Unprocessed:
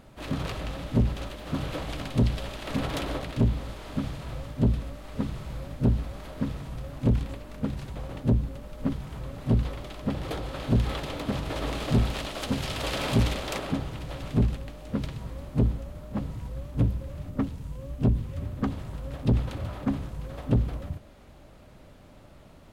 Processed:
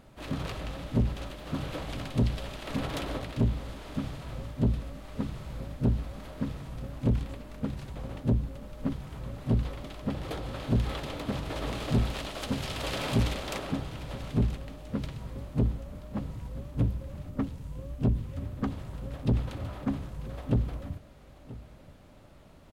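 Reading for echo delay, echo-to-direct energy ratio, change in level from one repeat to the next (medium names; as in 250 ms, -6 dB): 980 ms, -18.0 dB, no regular repeats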